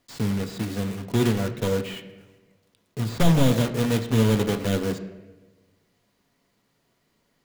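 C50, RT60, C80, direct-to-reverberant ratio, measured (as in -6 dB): 11.0 dB, 1.2 s, 13.0 dB, 6.0 dB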